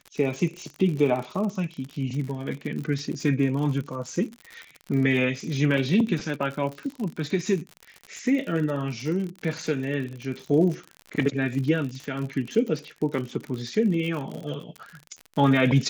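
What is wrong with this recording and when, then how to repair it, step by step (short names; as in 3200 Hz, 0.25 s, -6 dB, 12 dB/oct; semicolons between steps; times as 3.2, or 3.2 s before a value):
crackle 57/s -31 dBFS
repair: de-click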